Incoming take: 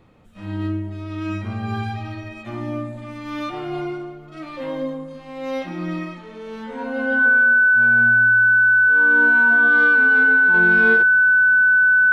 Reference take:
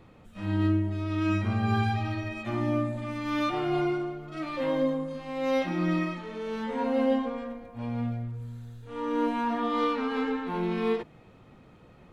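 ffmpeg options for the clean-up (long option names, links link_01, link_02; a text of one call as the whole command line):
ffmpeg -i in.wav -af "bandreject=frequency=1500:width=30,asetnsamples=nb_out_samples=441:pad=0,asendcmd='10.54 volume volume -4.5dB',volume=0dB" out.wav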